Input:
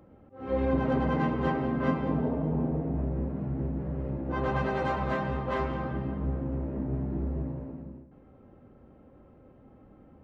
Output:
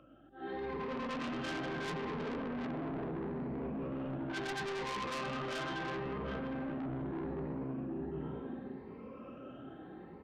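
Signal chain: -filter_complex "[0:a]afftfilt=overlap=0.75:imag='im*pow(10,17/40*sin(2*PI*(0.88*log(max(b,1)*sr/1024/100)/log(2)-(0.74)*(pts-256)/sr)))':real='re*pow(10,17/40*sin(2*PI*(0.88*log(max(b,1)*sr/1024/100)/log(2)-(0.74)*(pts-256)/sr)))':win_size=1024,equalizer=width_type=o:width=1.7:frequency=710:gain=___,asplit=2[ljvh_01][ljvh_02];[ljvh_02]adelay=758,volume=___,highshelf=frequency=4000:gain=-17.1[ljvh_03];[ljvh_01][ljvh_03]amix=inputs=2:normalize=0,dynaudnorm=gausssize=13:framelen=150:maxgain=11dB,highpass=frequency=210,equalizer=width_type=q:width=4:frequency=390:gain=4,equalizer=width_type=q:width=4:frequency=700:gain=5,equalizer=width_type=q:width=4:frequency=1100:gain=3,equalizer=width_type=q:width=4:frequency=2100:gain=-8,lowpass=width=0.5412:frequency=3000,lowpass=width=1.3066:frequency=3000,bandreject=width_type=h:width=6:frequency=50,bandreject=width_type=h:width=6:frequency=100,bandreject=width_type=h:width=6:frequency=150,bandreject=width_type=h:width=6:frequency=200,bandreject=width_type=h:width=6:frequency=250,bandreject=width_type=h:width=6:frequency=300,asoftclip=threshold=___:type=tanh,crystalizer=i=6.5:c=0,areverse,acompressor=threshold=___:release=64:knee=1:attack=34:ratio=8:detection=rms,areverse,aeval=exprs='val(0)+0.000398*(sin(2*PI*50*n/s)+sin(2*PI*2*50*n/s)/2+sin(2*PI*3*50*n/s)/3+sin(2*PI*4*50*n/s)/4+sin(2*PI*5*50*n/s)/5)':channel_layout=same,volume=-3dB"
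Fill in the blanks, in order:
-10.5, -8dB, -24dB, -36dB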